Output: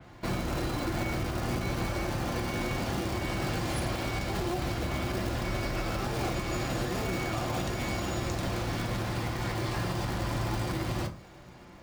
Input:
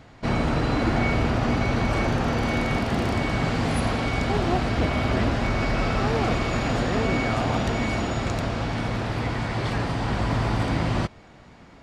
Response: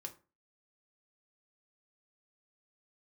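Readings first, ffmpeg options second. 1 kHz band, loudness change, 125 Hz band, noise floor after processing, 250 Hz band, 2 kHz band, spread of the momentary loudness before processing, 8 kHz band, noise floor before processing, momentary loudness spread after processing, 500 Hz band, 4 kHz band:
−8.0 dB, −7.5 dB, −7.5 dB, −50 dBFS, −8.5 dB, −8.0 dB, 4 LU, 0.0 dB, −49 dBFS, 1 LU, −7.5 dB, −5.0 dB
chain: -filter_complex "[0:a]acrossover=split=100|600|3800[link_01][link_02][link_03][link_04];[link_02]acrusher=bits=2:mode=log:mix=0:aa=0.000001[link_05];[link_01][link_05][link_03][link_04]amix=inputs=4:normalize=0[link_06];[1:a]atrim=start_sample=2205[link_07];[link_06][link_07]afir=irnorm=-1:irlink=0,acontrast=37,alimiter=limit=-18.5dB:level=0:latency=1:release=227,adynamicequalizer=threshold=0.00355:dfrequency=3800:dqfactor=0.7:tfrequency=3800:tqfactor=0.7:attack=5:release=100:ratio=0.375:range=3:mode=boostabove:tftype=highshelf,volume=-4dB"

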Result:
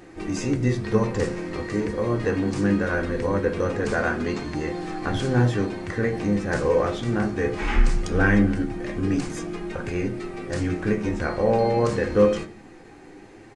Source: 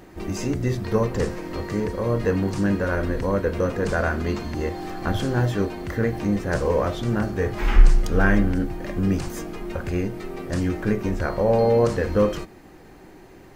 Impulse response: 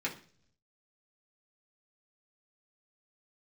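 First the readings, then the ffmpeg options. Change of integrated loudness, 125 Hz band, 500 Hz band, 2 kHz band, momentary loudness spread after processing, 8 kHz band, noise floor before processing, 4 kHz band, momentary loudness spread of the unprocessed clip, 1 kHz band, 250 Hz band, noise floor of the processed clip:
−0.5 dB, −1.5 dB, −0.5 dB, +1.5 dB, 9 LU, 0.0 dB, −46 dBFS, 0.0 dB, 9 LU, 0.0 dB, +0.5 dB, −46 dBFS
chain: -filter_complex "[0:a]flanger=delay=5.6:depth=9.6:regen=68:speed=0.21:shape=triangular,asplit=2[link_01][link_02];[1:a]atrim=start_sample=2205[link_03];[link_02][link_03]afir=irnorm=-1:irlink=0,volume=-6.5dB[link_04];[link_01][link_04]amix=inputs=2:normalize=0,aresample=22050,aresample=44100,volume=2dB"

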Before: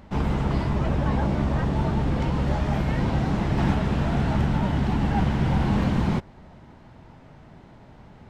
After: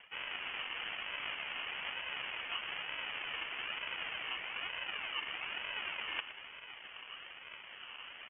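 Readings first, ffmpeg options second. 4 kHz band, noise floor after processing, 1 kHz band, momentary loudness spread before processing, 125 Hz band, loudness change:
+3.0 dB, −52 dBFS, −16.0 dB, 2 LU, below −40 dB, −15.5 dB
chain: -filter_complex "[0:a]areverse,acompressor=threshold=-34dB:ratio=12,areverse,acrusher=samples=34:mix=1:aa=0.000001:lfo=1:lforange=20.4:lforate=1.1,highpass=frequency=870:width=0.5412,highpass=frequency=870:width=1.3066,asplit=2[link_01][link_02];[link_02]aecho=0:1:117:0.211[link_03];[link_01][link_03]amix=inputs=2:normalize=0,lowpass=frequency=3200:width_type=q:width=0.5098,lowpass=frequency=3200:width_type=q:width=0.6013,lowpass=frequency=3200:width_type=q:width=0.9,lowpass=frequency=3200:width_type=q:width=2.563,afreqshift=-3800,volume=9dB"

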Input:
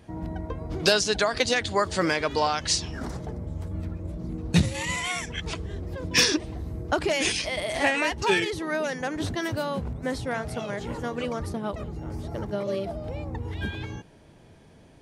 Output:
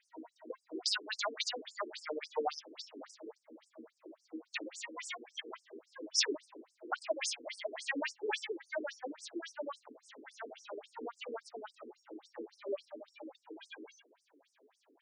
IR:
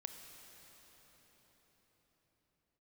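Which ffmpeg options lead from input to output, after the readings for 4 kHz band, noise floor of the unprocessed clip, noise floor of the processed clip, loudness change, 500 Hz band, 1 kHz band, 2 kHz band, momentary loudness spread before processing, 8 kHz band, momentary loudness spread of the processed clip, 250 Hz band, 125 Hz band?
−11.5 dB, −53 dBFS, −78 dBFS, −12.5 dB, −13.5 dB, −14.0 dB, −14.5 dB, 12 LU, −11.5 dB, 19 LU, −17.0 dB, below −40 dB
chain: -af "flanger=delay=5.8:depth=3.8:regen=55:speed=1.4:shape=triangular,afftfilt=real='re*between(b*sr/1024,320*pow(7100/320,0.5+0.5*sin(2*PI*3.6*pts/sr))/1.41,320*pow(7100/320,0.5+0.5*sin(2*PI*3.6*pts/sr))*1.41)':imag='im*between(b*sr/1024,320*pow(7100/320,0.5+0.5*sin(2*PI*3.6*pts/sr))/1.41,320*pow(7100/320,0.5+0.5*sin(2*PI*3.6*pts/sr))*1.41)':win_size=1024:overlap=0.75,volume=-1dB"

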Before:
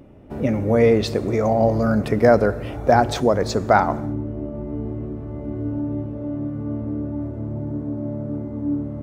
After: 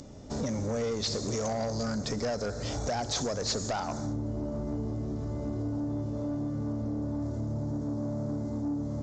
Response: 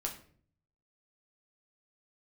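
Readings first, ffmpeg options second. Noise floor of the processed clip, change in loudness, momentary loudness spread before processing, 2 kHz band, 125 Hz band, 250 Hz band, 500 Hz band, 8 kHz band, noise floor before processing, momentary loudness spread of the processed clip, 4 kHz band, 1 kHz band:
−37 dBFS, −11.0 dB, 13 LU, −14.5 dB, −8.0 dB, −9.5 dB, −14.5 dB, +3.5 dB, −32 dBFS, 4 LU, −1.0 dB, −15.5 dB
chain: -filter_complex "[0:a]acrossover=split=3600[link_01][link_02];[link_02]acompressor=threshold=-45dB:ratio=4:attack=1:release=60[link_03];[link_01][link_03]amix=inputs=2:normalize=0,equalizer=frequency=350:width=5.7:gain=-6.5,acompressor=threshold=-27dB:ratio=4,aexciter=amount=11.3:drive=7.9:freq=4100,aresample=16000,asoftclip=type=tanh:threshold=-26dB,aresample=44100"

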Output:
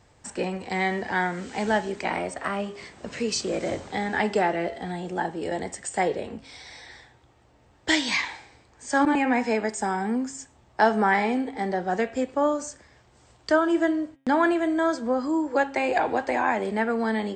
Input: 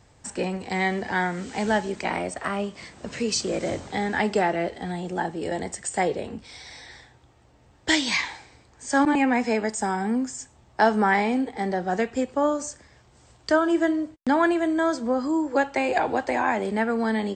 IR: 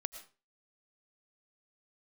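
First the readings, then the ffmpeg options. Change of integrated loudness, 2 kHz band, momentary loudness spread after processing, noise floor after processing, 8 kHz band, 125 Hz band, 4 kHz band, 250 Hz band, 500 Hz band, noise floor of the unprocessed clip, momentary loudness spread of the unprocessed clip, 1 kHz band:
−1.0 dB, −0.5 dB, 13 LU, −59 dBFS, −2.5 dB, −2.5 dB, −1.5 dB, −1.5 dB, −0.5 dB, −57 dBFS, 13 LU, 0.0 dB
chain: -af "bass=frequency=250:gain=-3,treble=frequency=4000:gain=-3,bandreject=frequency=135.1:width_type=h:width=4,bandreject=frequency=270.2:width_type=h:width=4,bandreject=frequency=405.3:width_type=h:width=4,bandreject=frequency=540.4:width_type=h:width=4,bandreject=frequency=675.5:width_type=h:width=4,bandreject=frequency=810.6:width_type=h:width=4,bandreject=frequency=945.7:width_type=h:width=4,bandreject=frequency=1080.8:width_type=h:width=4,bandreject=frequency=1215.9:width_type=h:width=4,bandreject=frequency=1351:width_type=h:width=4,bandreject=frequency=1486.1:width_type=h:width=4,bandreject=frequency=1621.2:width_type=h:width=4,bandreject=frequency=1756.3:width_type=h:width=4,bandreject=frequency=1891.4:width_type=h:width=4,bandreject=frequency=2026.5:width_type=h:width=4,bandreject=frequency=2161.6:width_type=h:width=4,bandreject=frequency=2296.7:width_type=h:width=4,bandreject=frequency=2431.8:width_type=h:width=4,bandreject=frequency=2566.9:width_type=h:width=4,bandreject=frequency=2702:width_type=h:width=4,bandreject=frequency=2837.1:width_type=h:width=4,bandreject=frequency=2972.2:width_type=h:width=4,bandreject=frequency=3107.3:width_type=h:width=4,bandreject=frequency=3242.4:width_type=h:width=4,bandreject=frequency=3377.5:width_type=h:width=4,bandreject=frequency=3512.6:width_type=h:width=4,bandreject=frequency=3647.7:width_type=h:width=4,bandreject=frequency=3782.8:width_type=h:width=4,bandreject=frequency=3917.9:width_type=h:width=4"

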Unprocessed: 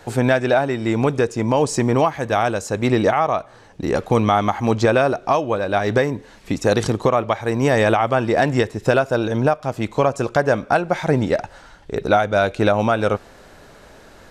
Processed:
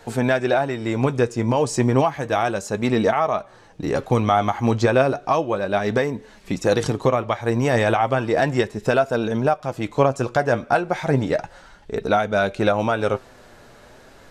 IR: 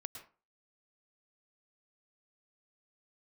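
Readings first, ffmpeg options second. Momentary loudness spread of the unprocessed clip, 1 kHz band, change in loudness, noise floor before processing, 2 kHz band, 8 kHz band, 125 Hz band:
7 LU, −2.0 dB, −2.0 dB, −46 dBFS, −2.0 dB, −2.5 dB, −1.5 dB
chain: -af "flanger=delay=4.4:depth=4.1:regen=59:speed=0.33:shape=sinusoidal,volume=2dB"

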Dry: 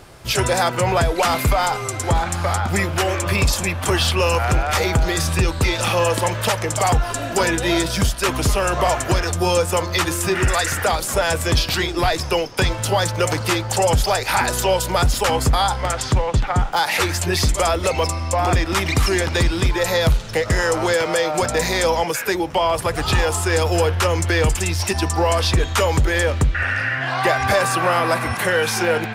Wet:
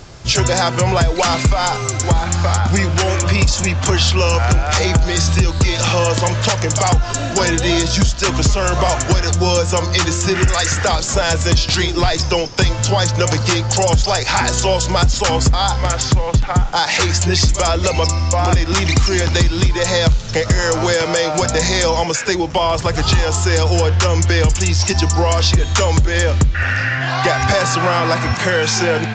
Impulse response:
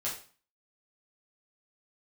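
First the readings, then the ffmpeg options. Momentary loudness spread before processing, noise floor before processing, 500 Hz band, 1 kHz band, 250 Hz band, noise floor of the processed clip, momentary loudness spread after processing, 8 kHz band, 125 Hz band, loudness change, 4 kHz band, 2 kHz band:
3 LU, −27 dBFS, +1.5 dB, +1.5 dB, +4.0 dB, −23 dBFS, 2 LU, +5.5 dB, +6.0 dB, +3.5 dB, +5.0 dB, +2.0 dB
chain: -af "bass=frequency=250:gain=6,treble=frequency=4000:gain=8,acompressor=threshold=-12dB:ratio=6,aresample=16000,aresample=44100,volume=2.5dB"

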